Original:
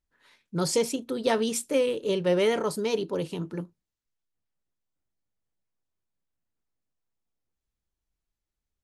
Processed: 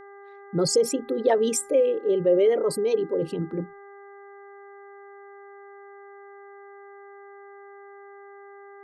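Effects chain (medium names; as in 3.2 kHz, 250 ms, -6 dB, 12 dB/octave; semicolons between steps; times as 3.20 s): resonances exaggerated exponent 2; expander -50 dBFS; mains buzz 400 Hz, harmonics 5, -50 dBFS -5 dB/octave; trim +4 dB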